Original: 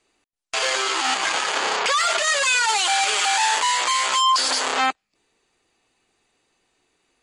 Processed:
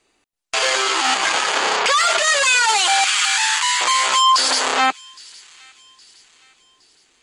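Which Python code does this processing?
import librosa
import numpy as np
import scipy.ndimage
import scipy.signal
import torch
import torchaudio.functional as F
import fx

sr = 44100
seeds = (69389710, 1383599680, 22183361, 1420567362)

p1 = fx.highpass(x, sr, hz=1100.0, slope=24, at=(3.04, 3.81))
p2 = p1 + fx.echo_wet_highpass(p1, sr, ms=815, feedback_pct=42, hz=2300.0, wet_db=-22.5, dry=0)
y = F.gain(torch.from_numpy(p2), 4.0).numpy()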